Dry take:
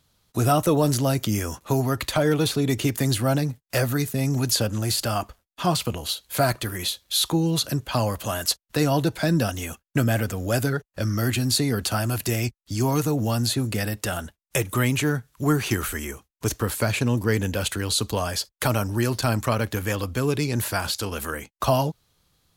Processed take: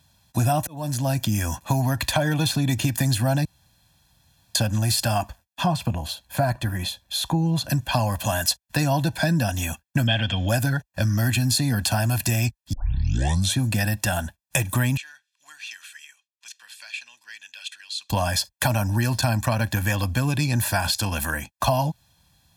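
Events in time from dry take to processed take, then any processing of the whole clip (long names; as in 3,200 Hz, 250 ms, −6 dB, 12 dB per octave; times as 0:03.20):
0:00.67–0:01.80: fade in equal-power
0:03.45–0:04.55: fill with room tone
0:05.64–0:07.70: high-shelf EQ 2,000 Hz −11 dB
0:10.07–0:10.49: low-pass with resonance 3,200 Hz, resonance Q 15
0:12.73: tape start 0.86 s
0:14.97–0:18.10: four-pole ladder band-pass 3,600 Hz, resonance 25%
whole clip: high-pass filter 47 Hz; comb filter 1.2 ms, depth 84%; downward compressor 4 to 1, threshold −21 dBFS; level +2.5 dB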